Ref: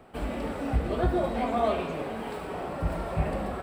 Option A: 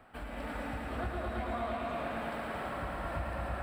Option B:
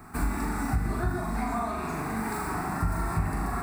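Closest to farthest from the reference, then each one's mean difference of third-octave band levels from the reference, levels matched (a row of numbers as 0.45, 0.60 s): A, B; 4.0, 7.0 dB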